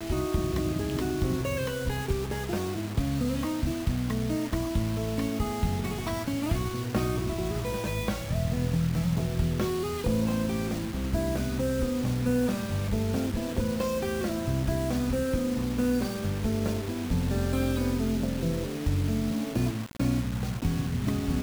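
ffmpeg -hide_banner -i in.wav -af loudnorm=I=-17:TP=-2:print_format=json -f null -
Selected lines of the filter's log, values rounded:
"input_i" : "-29.3",
"input_tp" : "-15.8",
"input_lra" : "1.4",
"input_thresh" : "-39.3",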